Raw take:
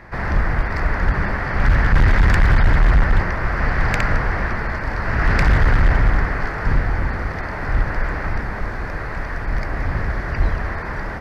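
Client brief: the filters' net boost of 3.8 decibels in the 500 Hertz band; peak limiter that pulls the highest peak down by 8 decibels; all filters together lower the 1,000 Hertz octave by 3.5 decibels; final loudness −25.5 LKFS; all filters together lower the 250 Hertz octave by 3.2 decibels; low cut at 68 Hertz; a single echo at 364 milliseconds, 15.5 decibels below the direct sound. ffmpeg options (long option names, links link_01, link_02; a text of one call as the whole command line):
ffmpeg -i in.wav -af "highpass=68,equalizer=frequency=250:width_type=o:gain=-7,equalizer=frequency=500:width_type=o:gain=8.5,equalizer=frequency=1000:width_type=o:gain=-7,alimiter=limit=-14.5dB:level=0:latency=1,aecho=1:1:364:0.168" out.wav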